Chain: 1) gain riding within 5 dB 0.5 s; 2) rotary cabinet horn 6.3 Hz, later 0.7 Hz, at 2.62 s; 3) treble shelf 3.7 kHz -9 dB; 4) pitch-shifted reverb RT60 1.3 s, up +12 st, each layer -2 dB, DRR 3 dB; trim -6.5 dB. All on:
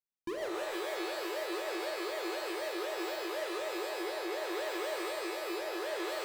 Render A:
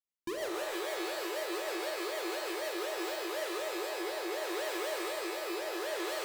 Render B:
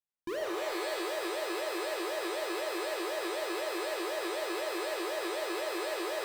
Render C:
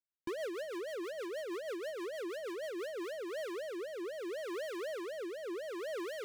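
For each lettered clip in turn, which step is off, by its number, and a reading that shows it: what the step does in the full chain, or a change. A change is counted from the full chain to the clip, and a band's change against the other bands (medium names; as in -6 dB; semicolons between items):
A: 3, 8 kHz band +4.0 dB; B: 2, 8 kHz band +2.0 dB; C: 4, 500 Hz band +6.0 dB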